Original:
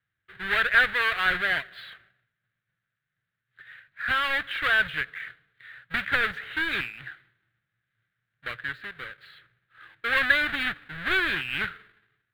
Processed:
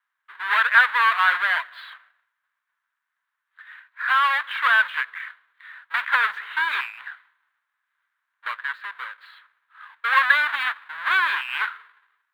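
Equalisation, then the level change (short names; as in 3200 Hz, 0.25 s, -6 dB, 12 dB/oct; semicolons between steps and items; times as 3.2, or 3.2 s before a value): resonant high-pass 1000 Hz, resonance Q 8.8; 0.0 dB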